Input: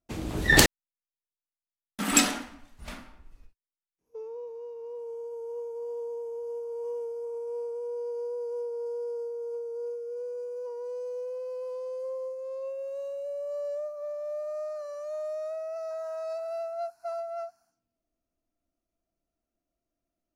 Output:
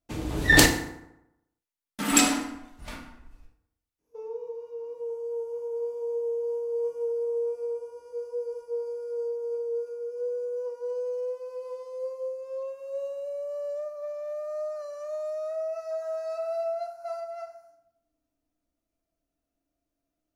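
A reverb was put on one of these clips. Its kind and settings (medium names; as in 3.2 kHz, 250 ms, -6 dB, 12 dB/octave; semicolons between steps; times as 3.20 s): FDN reverb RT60 0.85 s, low-frequency decay 1×, high-frequency decay 0.6×, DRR 3.5 dB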